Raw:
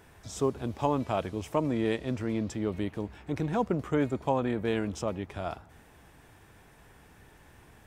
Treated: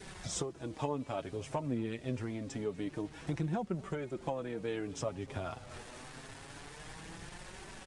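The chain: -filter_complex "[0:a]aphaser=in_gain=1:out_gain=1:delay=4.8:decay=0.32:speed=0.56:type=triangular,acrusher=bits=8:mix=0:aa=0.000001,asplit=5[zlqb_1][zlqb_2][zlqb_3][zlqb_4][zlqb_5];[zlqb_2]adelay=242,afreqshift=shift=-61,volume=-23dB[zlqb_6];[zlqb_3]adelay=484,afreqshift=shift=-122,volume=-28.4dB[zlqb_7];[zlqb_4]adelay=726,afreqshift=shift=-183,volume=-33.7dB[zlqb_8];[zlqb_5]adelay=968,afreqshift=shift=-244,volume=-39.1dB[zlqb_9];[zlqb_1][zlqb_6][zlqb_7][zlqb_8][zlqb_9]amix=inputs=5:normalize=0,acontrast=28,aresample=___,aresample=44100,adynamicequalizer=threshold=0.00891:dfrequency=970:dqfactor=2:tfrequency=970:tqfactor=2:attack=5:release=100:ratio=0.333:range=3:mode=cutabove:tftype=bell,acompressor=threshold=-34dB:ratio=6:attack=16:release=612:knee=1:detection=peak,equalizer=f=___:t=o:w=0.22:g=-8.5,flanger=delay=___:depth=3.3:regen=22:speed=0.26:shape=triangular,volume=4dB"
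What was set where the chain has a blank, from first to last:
22050, 64, 5.1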